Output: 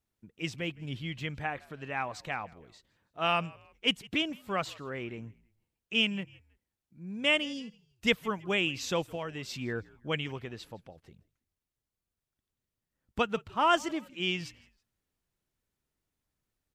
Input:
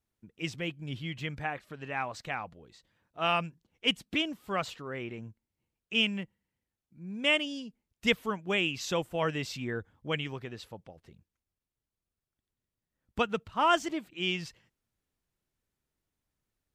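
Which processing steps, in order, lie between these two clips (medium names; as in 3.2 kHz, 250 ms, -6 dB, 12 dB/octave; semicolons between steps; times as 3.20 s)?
9.05–9.49 s: compression 5:1, threshold -34 dBFS, peak gain reduction 9 dB; frequency-shifting echo 162 ms, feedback 39%, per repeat -62 Hz, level -24 dB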